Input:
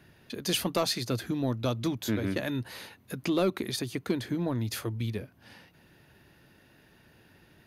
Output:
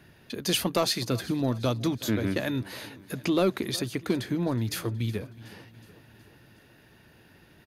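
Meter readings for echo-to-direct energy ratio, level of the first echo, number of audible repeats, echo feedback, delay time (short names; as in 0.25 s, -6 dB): -18.0 dB, -20.0 dB, 4, 58%, 0.369 s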